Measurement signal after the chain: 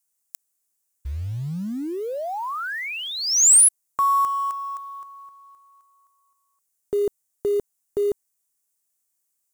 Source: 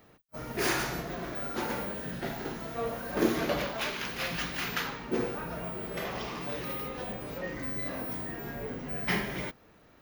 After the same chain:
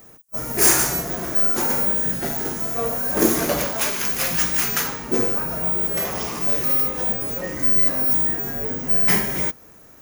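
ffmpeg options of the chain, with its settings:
-af "highshelf=f=5400:t=q:w=1.5:g=13,acrusher=bits=6:mode=log:mix=0:aa=0.000001,volume=2.37"

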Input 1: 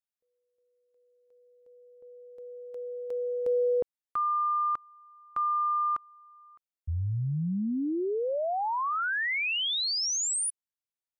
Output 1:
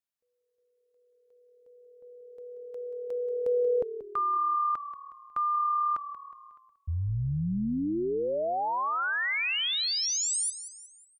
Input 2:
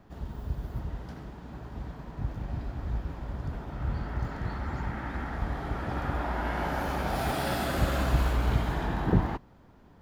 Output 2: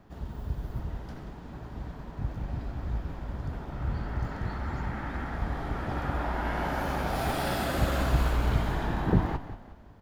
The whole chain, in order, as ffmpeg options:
-filter_complex "[0:a]asplit=5[s0][s1][s2][s3][s4];[s1]adelay=182,afreqshift=-38,volume=0.237[s5];[s2]adelay=364,afreqshift=-76,volume=0.105[s6];[s3]adelay=546,afreqshift=-114,volume=0.0457[s7];[s4]adelay=728,afreqshift=-152,volume=0.0202[s8];[s0][s5][s6][s7][s8]amix=inputs=5:normalize=0"

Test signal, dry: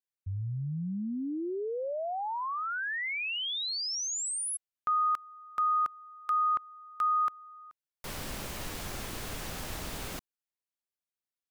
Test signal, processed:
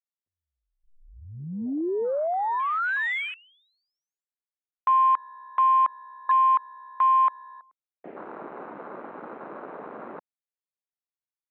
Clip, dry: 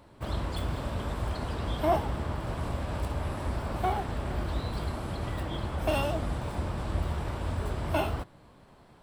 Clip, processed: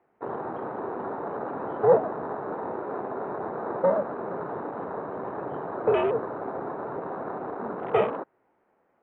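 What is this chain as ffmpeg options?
-af "highpass=f=450:t=q:w=0.5412,highpass=f=450:t=q:w=1.307,lowpass=f=2400:t=q:w=0.5176,lowpass=f=2400:t=q:w=0.7071,lowpass=f=2400:t=q:w=1.932,afreqshift=-190,afwtdn=0.01,volume=2.51"

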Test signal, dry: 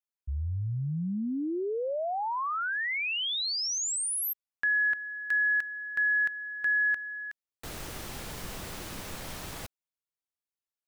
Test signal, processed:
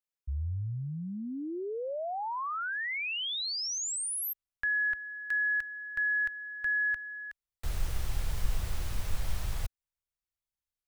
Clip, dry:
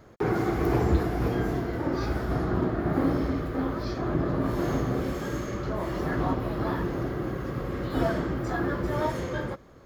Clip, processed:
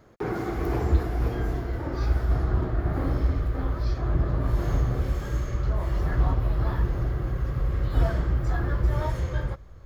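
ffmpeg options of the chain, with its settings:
-af "asubboost=boost=11.5:cutoff=73,volume=0.708"

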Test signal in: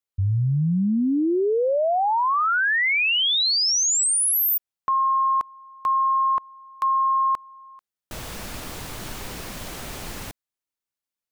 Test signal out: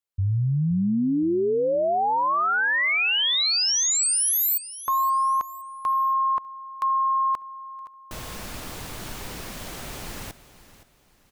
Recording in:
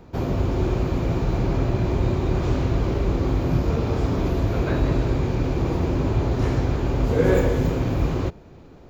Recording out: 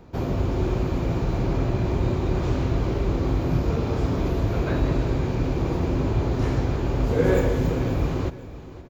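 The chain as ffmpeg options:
-af "aecho=1:1:519|1038|1557:0.158|0.0539|0.0183,volume=0.841"

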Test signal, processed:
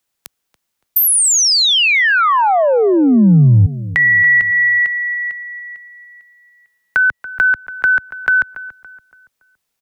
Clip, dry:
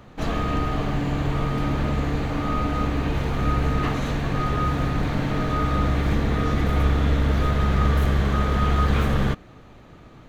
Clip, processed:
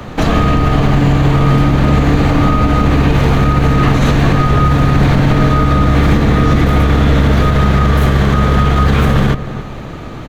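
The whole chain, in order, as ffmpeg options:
-filter_complex "[0:a]acrossover=split=88|180[s0][s1][s2];[s0]acompressor=threshold=0.0251:ratio=4[s3];[s1]acompressor=threshold=0.0355:ratio=4[s4];[s2]acompressor=threshold=0.0282:ratio=4[s5];[s3][s4][s5]amix=inputs=3:normalize=0,asplit=2[s6][s7];[s7]adelay=283,lowpass=f=2200:p=1,volume=0.168,asplit=2[s8][s9];[s9]adelay=283,lowpass=f=2200:p=1,volume=0.41,asplit=2[s10][s11];[s11]adelay=283,lowpass=f=2200:p=1,volume=0.41,asplit=2[s12][s13];[s13]adelay=283,lowpass=f=2200:p=1,volume=0.41[s14];[s8][s10][s12][s14]amix=inputs=4:normalize=0[s15];[s6][s15]amix=inputs=2:normalize=0,alimiter=level_in=10:limit=0.891:release=50:level=0:latency=1,volume=0.891"

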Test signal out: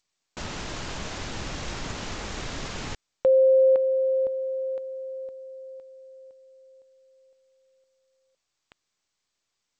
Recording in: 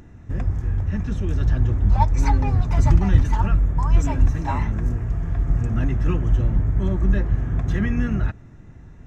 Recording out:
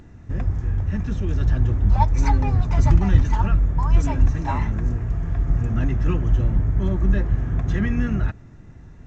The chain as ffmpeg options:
-ar 16000 -c:a g722

